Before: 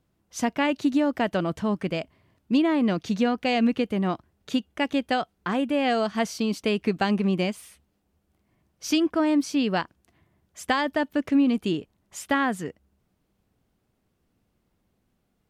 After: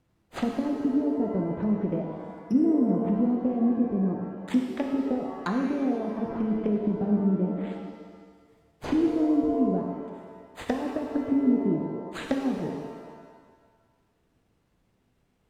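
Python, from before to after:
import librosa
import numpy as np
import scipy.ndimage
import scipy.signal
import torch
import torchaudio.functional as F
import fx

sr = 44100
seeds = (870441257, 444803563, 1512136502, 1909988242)

y = np.repeat(x[::8], 8)[:len(x)]
y = fx.env_lowpass_down(y, sr, base_hz=320.0, full_db=-22.0)
y = fx.rev_shimmer(y, sr, seeds[0], rt60_s=1.5, semitones=7, shimmer_db=-8, drr_db=1.5)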